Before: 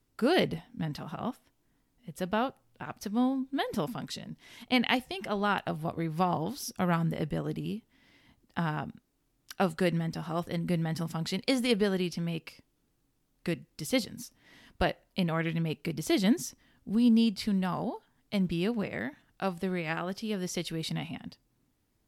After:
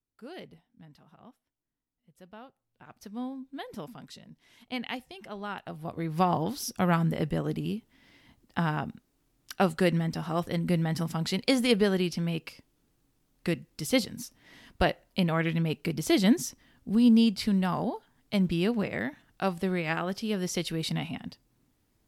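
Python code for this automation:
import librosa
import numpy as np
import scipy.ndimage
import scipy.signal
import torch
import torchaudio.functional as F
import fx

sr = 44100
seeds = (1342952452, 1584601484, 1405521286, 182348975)

y = fx.gain(x, sr, db=fx.line((2.46, -18.5), (3.03, -8.5), (5.62, -8.5), (6.19, 3.0)))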